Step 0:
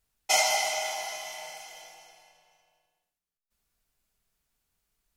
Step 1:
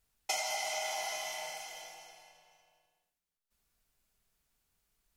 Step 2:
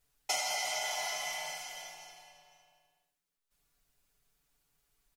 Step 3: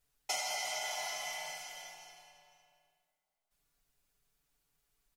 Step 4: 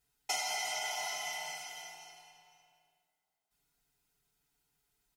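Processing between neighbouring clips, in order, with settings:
compressor 8:1, threshold -32 dBFS, peak gain reduction 13 dB
comb 7 ms, depth 78%
digital reverb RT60 3.3 s, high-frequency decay 0.6×, pre-delay 25 ms, DRR 18.5 dB; gain -3 dB
notch comb 570 Hz; gain +2 dB

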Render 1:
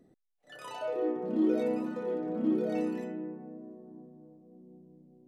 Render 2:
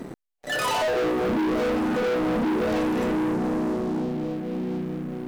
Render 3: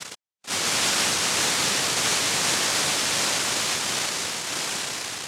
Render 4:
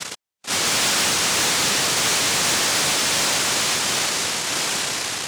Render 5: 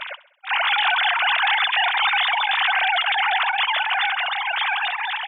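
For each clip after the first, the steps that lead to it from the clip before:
compressor 4:1, threshold -39 dBFS, peak gain reduction 13.5 dB; sample leveller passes 5; gain +8.5 dB
noise vocoder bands 1
soft clip -21.5 dBFS, distortion -13 dB; gain +6.5 dB
sine-wave speech; feedback echo 66 ms, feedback 52%, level -18 dB

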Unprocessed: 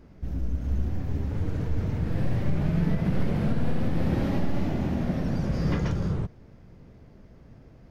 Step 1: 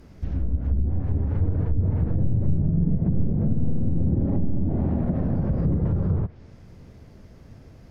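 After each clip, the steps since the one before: high shelf 4200 Hz +10.5 dB; treble ducked by the level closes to 330 Hz, closed at -20 dBFS; bell 88 Hz +6.5 dB 0.37 oct; gain +2.5 dB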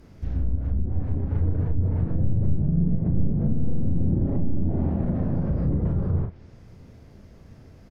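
doubler 35 ms -6 dB; gain -2 dB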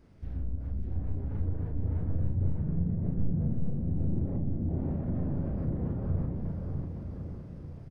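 on a send: bouncing-ball echo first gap 0.6 s, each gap 0.85×, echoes 5; on the sum: decimation joined by straight lines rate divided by 3×; gain -9 dB

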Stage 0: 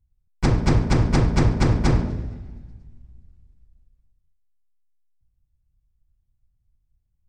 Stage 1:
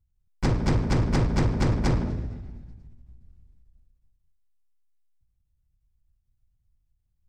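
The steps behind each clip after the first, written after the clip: soft clip -15 dBFS, distortion -13 dB; ending taper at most 100 dB/s; gain -1 dB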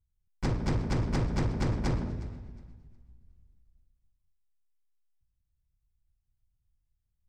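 thinning echo 0.362 s, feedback 23%, high-pass 200 Hz, level -18.5 dB; gain -6 dB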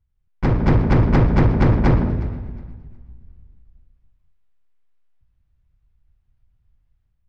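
LPF 2400 Hz 12 dB/oct; AGC gain up to 6.5 dB; gain +7.5 dB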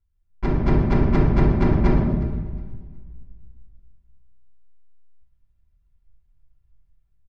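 comb 5.1 ms, depth 45%; shoebox room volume 3500 m³, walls furnished, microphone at 3.1 m; gain -7 dB

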